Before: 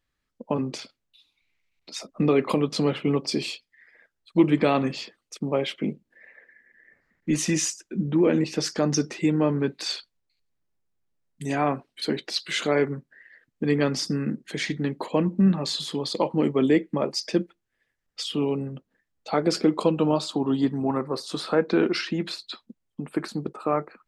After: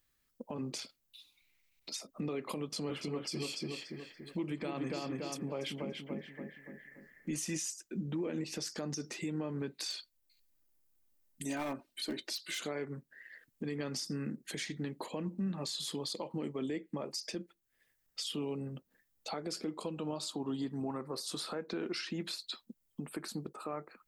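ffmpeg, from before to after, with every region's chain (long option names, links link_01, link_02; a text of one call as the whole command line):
ffmpeg -i in.wav -filter_complex "[0:a]asettb=1/sr,asplit=3[link_01][link_02][link_03];[link_01]atrim=end=2.614[link_04];[link_02]atrim=start=2.61:end=7.53,asetpts=PTS-STARTPTS,afade=type=in:duration=0.004:curve=qsin,afade=type=out:start_time=4.916:duration=0.004:curve=qsin,bandreject=frequency=3800:width=14,asplit=2[link_05][link_06];[link_06]adelay=286,lowpass=frequency=2600:poles=1,volume=-4dB,asplit=2[link_07][link_08];[link_08]adelay=286,lowpass=frequency=2600:poles=1,volume=0.38,asplit=2[link_09][link_10];[link_10]adelay=286,lowpass=frequency=2600:poles=1,volume=0.38,asplit=2[link_11][link_12];[link_12]adelay=286,lowpass=frequency=2600:poles=1,volume=0.38,asplit=2[link_13][link_14];[link_14]adelay=286,lowpass=frequency=2600:poles=1,volume=0.38[link_15];[link_05][link_07][link_09][link_11][link_13][link_15]amix=inputs=6:normalize=0,atrim=end_sample=216972[link_16];[link_03]atrim=start=7.526[link_17];[link_04][link_16]acrossfade=duration=0.004:curve1=hsin:curve2=qsin[link_18];[link_18][link_17]acrossfade=duration=0.004:curve1=qsin:curve2=hsin,asettb=1/sr,asplit=3[link_19][link_20][link_21];[link_19]atrim=end=9.904[link_22];[link_20]atrim=start=9.9:end=12.6,asetpts=PTS-STARTPTS,afade=type=in:duration=0.004:curve=qsin,afade=type=out:start_time=2.696:duration=0.004:curve=qsin,volume=19dB,asoftclip=hard,volume=-19dB,aecho=1:1:3.3:0.52,atrim=end_sample=119070[link_23];[link_21]atrim=start=12.596[link_24];[link_22][link_23]acrossfade=duration=0.004:curve1=hsin:curve2=qsin[link_25];[link_25][link_24]acrossfade=duration=0.004:curve1=qsin:curve2=hsin,aemphasis=mode=production:type=50fm,acompressor=threshold=-46dB:ratio=1.5,alimiter=level_in=3dB:limit=-24dB:level=0:latency=1:release=139,volume=-3dB,volume=-1.5dB" out.wav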